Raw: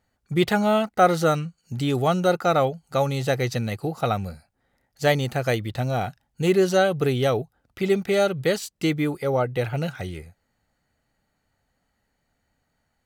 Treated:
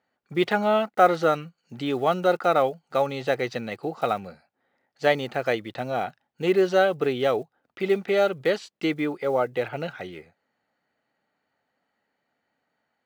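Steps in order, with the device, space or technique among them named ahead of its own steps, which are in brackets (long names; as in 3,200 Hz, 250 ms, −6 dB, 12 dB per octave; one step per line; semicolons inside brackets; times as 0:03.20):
early digital voice recorder (band-pass filter 270–3,500 Hz; one scale factor per block 7 bits)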